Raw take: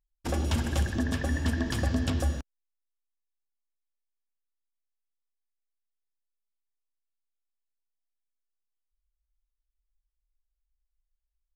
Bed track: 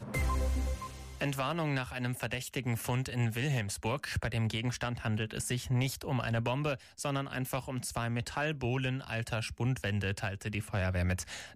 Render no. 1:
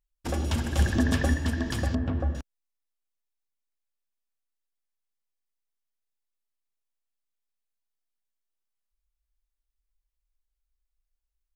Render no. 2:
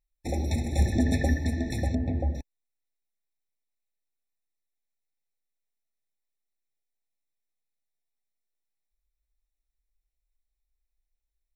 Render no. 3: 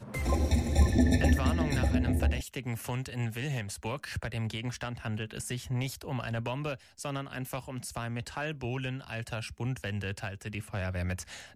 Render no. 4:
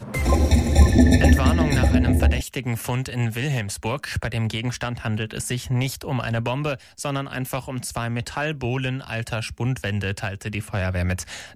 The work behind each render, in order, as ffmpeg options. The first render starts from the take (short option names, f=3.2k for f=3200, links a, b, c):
-filter_complex "[0:a]asettb=1/sr,asplit=3[a][b][c];[a]atrim=end=1.954[d];[b]atrim=start=1.95:end=2.35,asetpts=PTS-STARTPTS,afade=t=in:d=0.004:c=qsin,afade=t=out:st=0.396:d=0.004:c=qsin,lowpass=1.4k[e];[c]atrim=start=2.346[f];[d][e]acrossfade=d=0.004:c1=hsin:c2=qsin[g];[g][f]acrossfade=d=0.004:c1=qsin:c2=hsin,asplit=3[h][i][j];[h]atrim=end=0.792[k];[i]atrim=start=0.788:end=1.342,asetpts=PTS-STARTPTS,volume=5dB[l];[j]atrim=start=1.338[m];[k][l]acrossfade=d=0.004:c1=hsin:c2=hsin[n];[n][m]acrossfade=d=0.004:c1=hsin:c2=hsin"
-af "afftfilt=real='re*eq(mod(floor(b*sr/1024/870),2),0)':imag='im*eq(mod(floor(b*sr/1024/870),2),0)':win_size=1024:overlap=0.75"
-filter_complex "[1:a]volume=-2dB[a];[0:a][a]amix=inputs=2:normalize=0"
-af "volume=9.5dB"